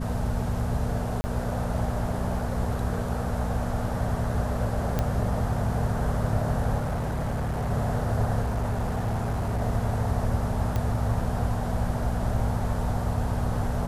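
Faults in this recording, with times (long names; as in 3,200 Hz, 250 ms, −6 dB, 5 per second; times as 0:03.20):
mains hum 60 Hz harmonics 4 −31 dBFS
0:01.21–0:01.24: drop-out 30 ms
0:04.99: click −12 dBFS
0:06.79–0:07.71: clipping −24.5 dBFS
0:08.42–0:09.62: clipping −23 dBFS
0:10.76: click −15 dBFS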